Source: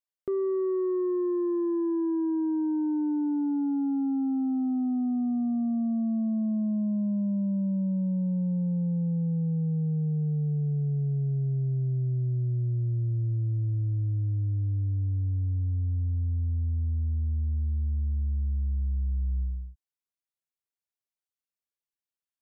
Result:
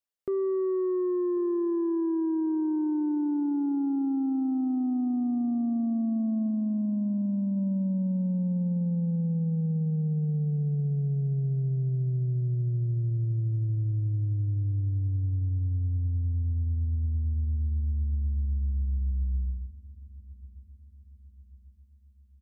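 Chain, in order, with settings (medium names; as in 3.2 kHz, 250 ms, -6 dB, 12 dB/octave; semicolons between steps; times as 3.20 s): 6.48–7.57 s: dynamic bell 770 Hz, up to -4 dB, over -45 dBFS, Q 0.75; feedback delay 1091 ms, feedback 52%, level -19.5 dB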